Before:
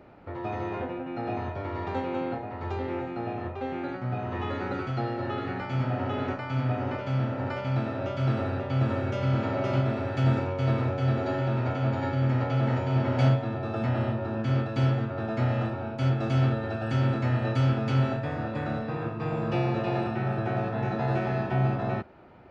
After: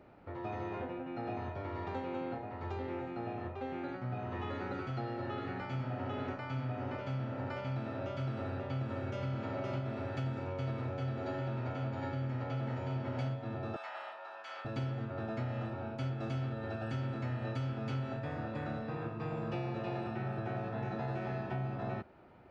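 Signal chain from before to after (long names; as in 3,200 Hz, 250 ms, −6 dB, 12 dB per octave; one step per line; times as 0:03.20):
0:13.76–0:14.65: high-pass filter 750 Hz 24 dB per octave
downward compressor 6 to 1, threshold −27 dBFS, peak gain reduction 9.5 dB
level −6.5 dB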